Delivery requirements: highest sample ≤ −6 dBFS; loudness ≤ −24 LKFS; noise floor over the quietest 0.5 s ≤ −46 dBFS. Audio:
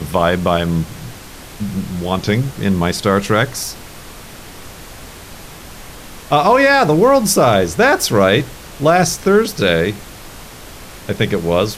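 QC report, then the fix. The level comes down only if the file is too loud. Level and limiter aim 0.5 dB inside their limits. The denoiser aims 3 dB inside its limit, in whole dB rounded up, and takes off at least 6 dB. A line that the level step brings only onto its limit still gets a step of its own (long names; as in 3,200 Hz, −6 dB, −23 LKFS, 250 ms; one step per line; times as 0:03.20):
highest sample −2.0 dBFS: out of spec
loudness −15.0 LKFS: out of spec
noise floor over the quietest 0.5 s −35 dBFS: out of spec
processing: broadband denoise 6 dB, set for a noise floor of −35 dBFS
level −9.5 dB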